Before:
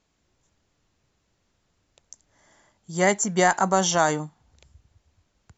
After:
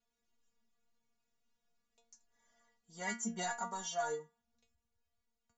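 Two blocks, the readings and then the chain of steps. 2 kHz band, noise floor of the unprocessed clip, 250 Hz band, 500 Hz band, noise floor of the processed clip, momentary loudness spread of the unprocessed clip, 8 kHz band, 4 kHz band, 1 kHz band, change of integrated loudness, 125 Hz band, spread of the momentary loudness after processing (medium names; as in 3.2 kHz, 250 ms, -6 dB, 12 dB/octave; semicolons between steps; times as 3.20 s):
-17.0 dB, -72 dBFS, -18.0 dB, -18.5 dB, under -85 dBFS, 13 LU, no reading, -16.0 dB, -17.5 dB, -17.0 dB, -23.0 dB, 6 LU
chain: flange 0.39 Hz, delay 1.4 ms, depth 6.5 ms, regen +54%; inharmonic resonator 230 Hz, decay 0.28 s, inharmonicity 0.002; gain riding 0.5 s; trim +1 dB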